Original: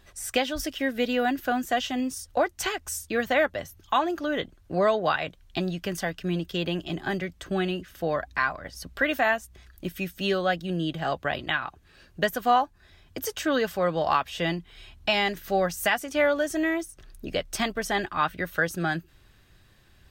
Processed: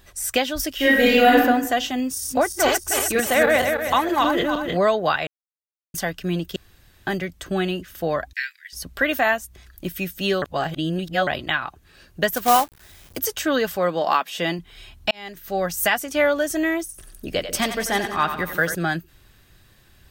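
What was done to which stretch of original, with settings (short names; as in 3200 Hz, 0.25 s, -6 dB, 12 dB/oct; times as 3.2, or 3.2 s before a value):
0.75–1.38 reverb throw, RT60 0.98 s, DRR -8 dB
2.06–4.77 regenerating reverse delay 0.156 s, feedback 59%, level -0.5 dB
5.27–5.94 mute
6.56–7.07 room tone
8.33–8.73 steep high-pass 1700 Hz 72 dB/oct
10.42–11.27 reverse
12.32–13.18 companded quantiser 4-bit
13.77–14.59 brick-wall FIR high-pass 160 Hz
15.11–15.81 fade in
16.85–18.75 split-band echo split 450 Hz, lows 0.145 s, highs 90 ms, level -9 dB
whole clip: high shelf 9100 Hz +9.5 dB; gain +3.5 dB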